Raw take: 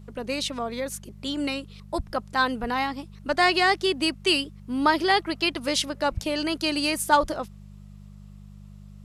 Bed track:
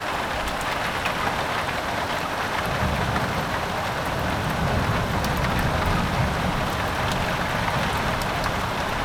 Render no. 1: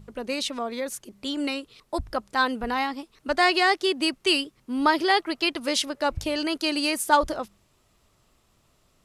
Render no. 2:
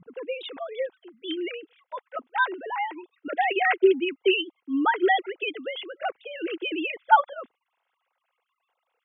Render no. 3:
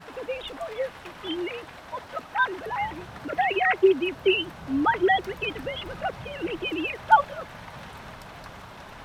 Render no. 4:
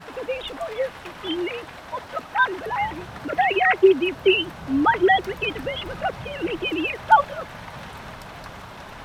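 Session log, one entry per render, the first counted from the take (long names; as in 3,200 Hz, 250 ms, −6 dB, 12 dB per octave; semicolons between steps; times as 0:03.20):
hum removal 50 Hz, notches 4
three sine waves on the formant tracks; notch comb filter 600 Hz
mix in bed track −18 dB
level +4 dB; brickwall limiter −3 dBFS, peak gain reduction 2.5 dB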